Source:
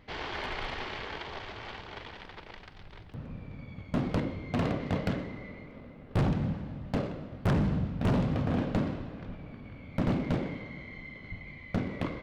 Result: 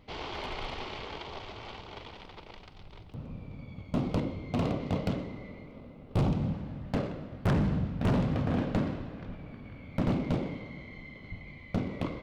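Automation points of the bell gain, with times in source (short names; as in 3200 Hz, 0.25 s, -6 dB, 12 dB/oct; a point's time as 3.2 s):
bell 1700 Hz 0.49 oct
6.37 s -10.5 dB
6.8 s 0 dB
9.82 s 0 dB
10.41 s -8 dB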